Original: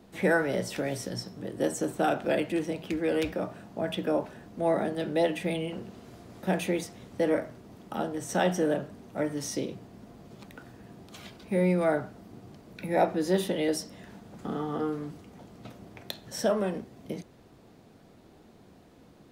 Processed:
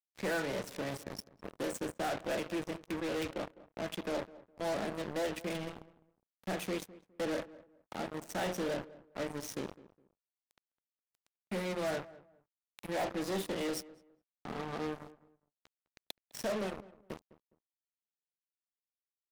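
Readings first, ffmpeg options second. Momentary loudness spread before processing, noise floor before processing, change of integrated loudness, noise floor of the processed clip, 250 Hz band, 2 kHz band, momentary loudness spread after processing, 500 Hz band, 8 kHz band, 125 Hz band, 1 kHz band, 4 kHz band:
22 LU, -56 dBFS, -8.5 dB, under -85 dBFS, -9.5 dB, -6.5 dB, 14 LU, -9.0 dB, -6.5 dB, -10.5 dB, -7.5 dB, -4.5 dB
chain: -filter_complex "[0:a]bandreject=f=60:t=h:w=6,bandreject=f=120:t=h:w=6,bandreject=f=180:t=h:w=6,bandreject=f=240:t=h:w=6,bandreject=f=300:t=h:w=6,bandreject=f=360:t=h:w=6,bandreject=f=420:t=h:w=6,bandreject=f=480:t=h:w=6,bandreject=f=540:t=h:w=6,acrusher=bits=4:mix=0:aa=0.5,asoftclip=type=tanh:threshold=0.0473,asplit=2[s0][s1];[s1]adelay=206,lowpass=f=1400:p=1,volume=0.126,asplit=2[s2][s3];[s3]adelay=206,lowpass=f=1400:p=1,volume=0.26[s4];[s0][s2][s4]amix=inputs=3:normalize=0,volume=0.668"

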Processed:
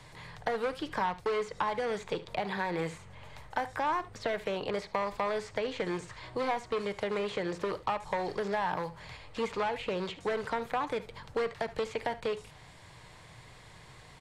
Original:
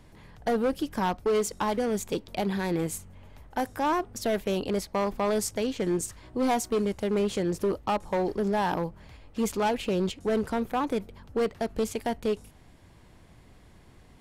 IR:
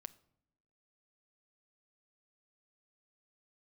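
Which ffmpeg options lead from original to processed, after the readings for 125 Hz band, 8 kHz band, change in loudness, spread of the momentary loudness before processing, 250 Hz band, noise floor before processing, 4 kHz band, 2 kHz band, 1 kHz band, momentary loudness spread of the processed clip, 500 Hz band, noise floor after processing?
-8.0 dB, -15.5 dB, -5.0 dB, 6 LU, -11.0 dB, -54 dBFS, -3.0 dB, +0.5 dB, -2.5 dB, 20 LU, -5.0 dB, -53 dBFS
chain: -filter_complex "[0:a]acrossover=split=2500[s0][s1];[s1]acompressor=threshold=0.00251:ratio=4:attack=1:release=60[s2];[s0][s2]amix=inputs=2:normalize=0,equalizer=f=125:t=o:w=1:g=10,equalizer=f=250:t=o:w=1:g=-5,equalizer=f=500:t=o:w=1:g=7,equalizer=f=1000:t=o:w=1:g=10,equalizer=f=2000:t=o:w=1:g=10,equalizer=f=4000:t=o:w=1:g=11,equalizer=f=8000:t=o:w=1:g=12,acrossover=split=220|1600|5500[s3][s4][s5][s6];[s3]acompressor=threshold=0.00891:ratio=4[s7];[s4]acompressor=threshold=0.0501:ratio=4[s8];[s5]acompressor=threshold=0.0178:ratio=4[s9];[s6]acompressor=threshold=0.00141:ratio=4[s10];[s7][s8][s9][s10]amix=inputs=4:normalize=0,aecho=1:1:73:0.141[s11];[1:a]atrim=start_sample=2205,atrim=end_sample=3528[s12];[s11][s12]afir=irnorm=-1:irlink=0"

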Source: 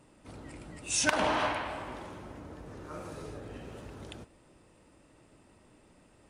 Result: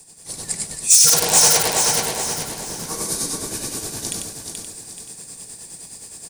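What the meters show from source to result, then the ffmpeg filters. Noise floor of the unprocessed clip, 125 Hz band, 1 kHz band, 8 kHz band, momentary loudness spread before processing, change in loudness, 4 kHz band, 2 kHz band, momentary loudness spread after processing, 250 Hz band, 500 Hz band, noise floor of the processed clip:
-62 dBFS, +10.5 dB, +7.5 dB, +23.5 dB, 20 LU, +17.0 dB, +18.5 dB, +6.0 dB, 24 LU, +7.0 dB, +8.5 dB, -42 dBFS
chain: -filter_complex "[0:a]aeval=exprs='(mod(8.41*val(0)+1,2)-1)/8.41':c=same,highshelf=f=3300:g=9,tremolo=f=9.6:d=0.57,bandreject=f=1400:w=6.2,asoftclip=type=tanh:threshold=0.0596,highpass=240,asplit=2[s0][s1];[s1]aecho=0:1:95:0.531[s2];[s0][s2]amix=inputs=2:normalize=0,aexciter=amount=2.5:drive=9.7:freq=4300,asplit=2[s3][s4];[s4]aecho=0:1:430|860|1290|1720:0.501|0.185|0.0686|0.0254[s5];[s3][s5]amix=inputs=2:normalize=0,dynaudnorm=f=200:g=3:m=2.37,afreqshift=-140,alimiter=level_in=2.11:limit=0.891:release=50:level=0:latency=1,volume=0.891"

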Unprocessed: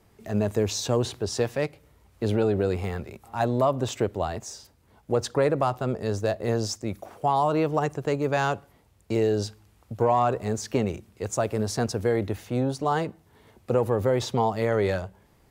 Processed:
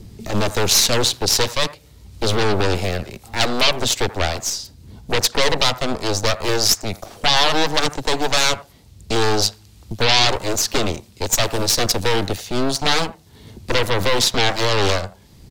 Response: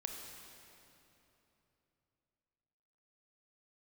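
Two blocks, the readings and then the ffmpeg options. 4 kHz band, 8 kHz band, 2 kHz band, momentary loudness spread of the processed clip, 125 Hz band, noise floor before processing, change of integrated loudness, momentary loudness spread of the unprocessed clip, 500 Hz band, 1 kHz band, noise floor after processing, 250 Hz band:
+21.0 dB, +16.5 dB, +13.5 dB, 9 LU, +2.5 dB, -61 dBFS, +7.5 dB, 9 LU, +2.5 dB, +5.0 dB, -48 dBFS, +2.0 dB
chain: -filter_complex "[0:a]highshelf=f=9500:g=3.5,aeval=exprs='0.299*(cos(1*acos(clip(val(0)/0.299,-1,1)))-cos(1*PI/2))+0.119*(cos(3*acos(clip(val(0)/0.299,-1,1)))-cos(3*PI/2))+0.106*(cos(5*acos(clip(val(0)/0.299,-1,1)))-cos(5*PI/2))+0.119*(cos(8*acos(clip(val(0)/0.299,-1,1)))-cos(8*PI/2))':c=same,firequalizer=gain_entry='entry(1400,0);entry(4100,14);entry(11000,5)':delay=0.05:min_phase=1,acrossover=split=300|480|2000[s0][s1][s2][s3];[s0]acompressor=mode=upward:threshold=0.0631:ratio=2.5[s4];[s2]aecho=1:1:82:0.251[s5];[s4][s1][s5][s3]amix=inputs=4:normalize=0"

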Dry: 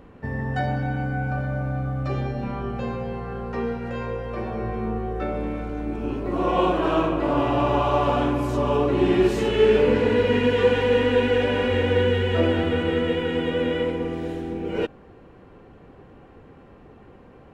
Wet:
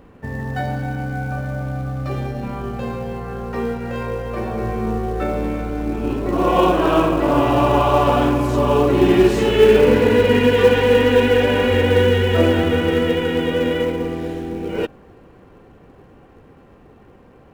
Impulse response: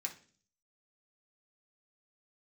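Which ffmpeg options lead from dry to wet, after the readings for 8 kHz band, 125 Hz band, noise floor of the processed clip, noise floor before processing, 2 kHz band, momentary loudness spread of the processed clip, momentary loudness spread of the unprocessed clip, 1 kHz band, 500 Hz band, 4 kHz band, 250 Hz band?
no reading, +4.5 dB, -47 dBFS, -48 dBFS, +5.0 dB, 13 LU, 11 LU, +5.5 dB, +5.5 dB, +5.5 dB, +5.5 dB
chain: -filter_complex "[0:a]dynaudnorm=f=240:g=31:m=2.11,asplit=2[s0][s1];[s1]acrusher=bits=3:mode=log:mix=0:aa=0.000001,volume=0.282[s2];[s0][s2]amix=inputs=2:normalize=0,volume=0.891"

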